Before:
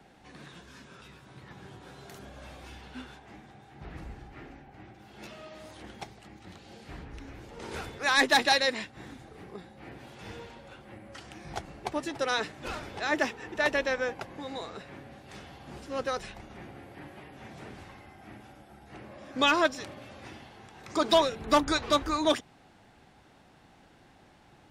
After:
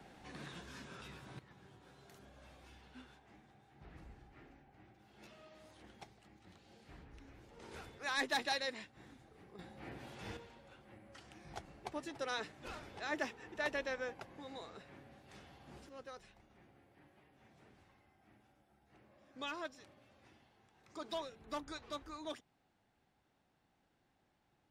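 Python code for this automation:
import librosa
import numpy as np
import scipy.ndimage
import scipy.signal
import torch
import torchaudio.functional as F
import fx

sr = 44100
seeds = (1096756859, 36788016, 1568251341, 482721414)

y = fx.gain(x, sr, db=fx.steps((0.0, -1.0), (1.39, -13.0), (9.59, -3.5), (10.37, -11.0), (15.89, -19.5)))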